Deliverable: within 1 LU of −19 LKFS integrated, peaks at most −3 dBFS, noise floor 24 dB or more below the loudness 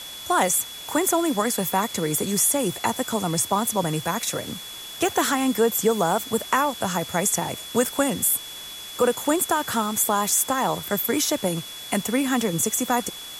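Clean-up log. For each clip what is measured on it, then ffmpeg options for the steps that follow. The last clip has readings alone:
interfering tone 3,400 Hz; level of the tone −37 dBFS; background noise floor −38 dBFS; target noise floor −47 dBFS; integrated loudness −23.0 LKFS; sample peak −8.0 dBFS; target loudness −19.0 LKFS
→ -af "bandreject=frequency=3400:width=30"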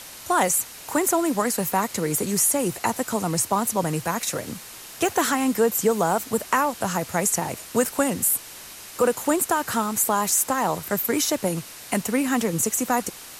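interfering tone none found; background noise floor −41 dBFS; target noise floor −47 dBFS
→ -af "afftdn=noise_reduction=6:noise_floor=-41"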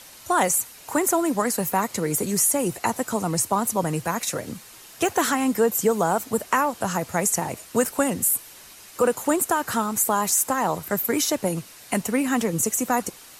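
background noise floor −46 dBFS; target noise floor −47 dBFS
→ -af "afftdn=noise_reduction=6:noise_floor=-46"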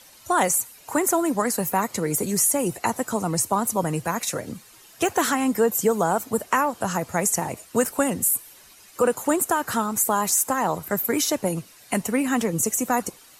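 background noise floor −50 dBFS; integrated loudness −23.0 LKFS; sample peak −8.0 dBFS; target loudness −19.0 LKFS
→ -af "volume=4dB"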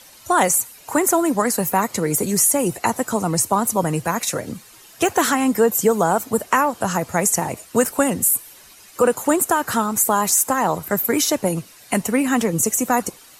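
integrated loudness −19.0 LKFS; sample peak −4.0 dBFS; background noise floor −46 dBFS

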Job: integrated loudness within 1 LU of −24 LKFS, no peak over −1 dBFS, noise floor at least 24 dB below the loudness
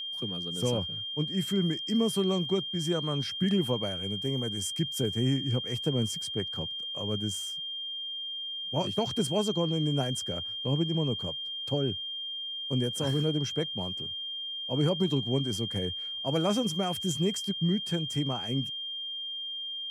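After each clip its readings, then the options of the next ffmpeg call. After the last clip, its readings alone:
interfering tone 3,200 Hz; level of the tone −34 dBFS; integrated loudness −30.0 LKFS; sample peak −14.5 dBFS; target loudness −24.0 LKFS
→ -af "bandreject=frequency=3200:width=30"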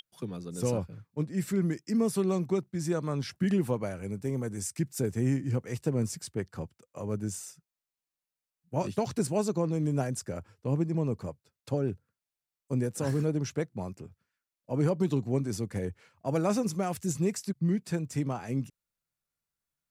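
interfering tone none found; integrated loudness −31.5 LKFS; sample peak −15.0 dBFS; target loudness −24.0 LKFS
→ -af "volume=7.5dB"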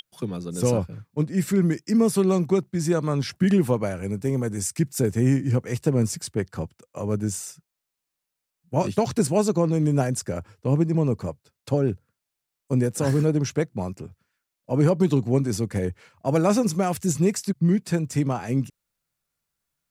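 integrated loudness −24.0 LKFS; sample peak −7.5 dBFS; background noise floor −84 dBFS

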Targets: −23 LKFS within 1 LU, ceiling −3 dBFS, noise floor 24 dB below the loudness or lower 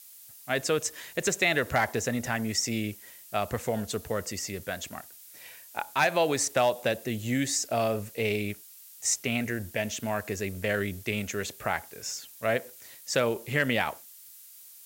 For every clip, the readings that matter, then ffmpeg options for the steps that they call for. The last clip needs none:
background noise floor −50 dBFS; target noise floor −54 dBFS; integrated loudness −29.5 LKFS; sample peak −10.0 dBFS; target loudness −23.0 LKFS
→ -af "afftdn=noise_reduction=6:noise_floor=-50"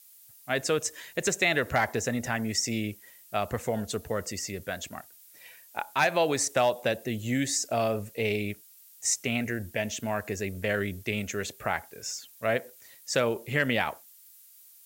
background noise floor −55 dBFS; integrated loudness −29.5 LKFS; sample peak −10.5 dBFS; target loudness −23.0 LKFS
→ -af "volume=6.5dB"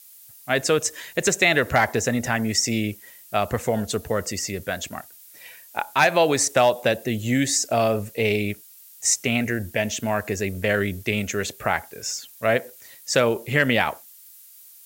integrated loudness −23.0 LKFS; sample peak −4.0 dBFS; background noise floor −48 dBFS

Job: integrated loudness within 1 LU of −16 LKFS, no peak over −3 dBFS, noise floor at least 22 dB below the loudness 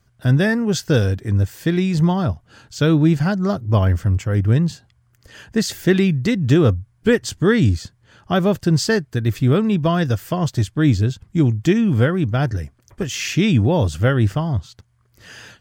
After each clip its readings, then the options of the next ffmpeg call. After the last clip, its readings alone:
integrated loudness −18.5 LKFS; sample peak −3.0 dBFS; target loudness −16.0 LKFS
→ -af "volume=2.5dB,alimiter=limit=-3dB:level=0:latency=1"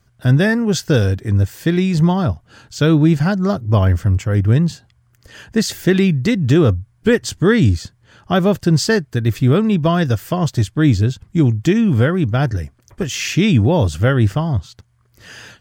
integrated loudness −16.5 LKFS; sample peak −3.0 dBFS; background noise floor −58 dBFS

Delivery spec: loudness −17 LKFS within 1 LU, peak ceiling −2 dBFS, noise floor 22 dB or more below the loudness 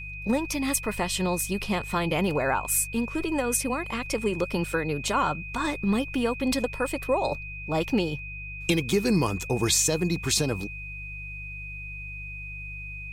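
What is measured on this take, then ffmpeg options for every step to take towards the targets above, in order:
mains hum 50 Hz; hum harmonics up to 150 Hz; level of the hum −38 dBFS; interfering tone 2,500 Hz; level of the tone −37 dBFS; integrated loudness −27.0 LKFS; sample peak −10.5 dBFS; target loudness −17.0 LKFS
→ -af "bandreject=frequency=50:width_type=h:width=4,bandreject=frequency=100:width_type=h:width=4,bandreject=frequency=150:width_type=h:width=4"
-af "bandreject=frequency=2500:width=30"
-af "volume=10dB,alimiter=limit=-2dB:level=0:latency=1"

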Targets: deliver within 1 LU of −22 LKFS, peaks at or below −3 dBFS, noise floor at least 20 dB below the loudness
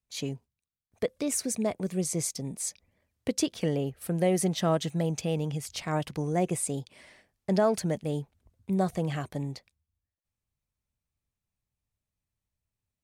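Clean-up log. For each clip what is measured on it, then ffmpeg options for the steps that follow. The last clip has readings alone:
integrated loudness −30.0 LKFS; sample peak −13.5 dBFS; target loudness −22.0 LKFS
→ -af "volume=8dB"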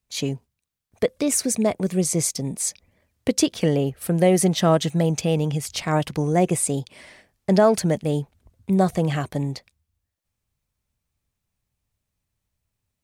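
integrated loudness −22.5 LKFS; sample peak −5.5 dBFS; background noise floor −81 dBFS

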